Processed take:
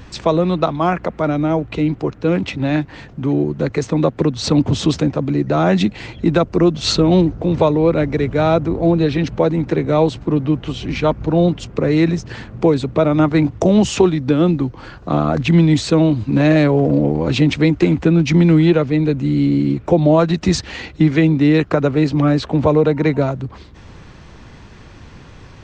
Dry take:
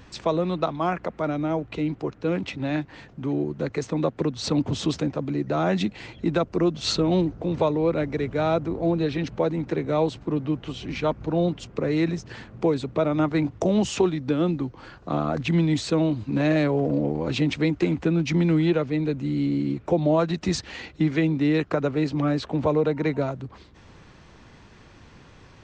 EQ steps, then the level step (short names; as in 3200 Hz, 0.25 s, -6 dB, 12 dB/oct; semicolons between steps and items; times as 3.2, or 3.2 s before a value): low shelf 140 Hz +5.5 dB; +7.5 dB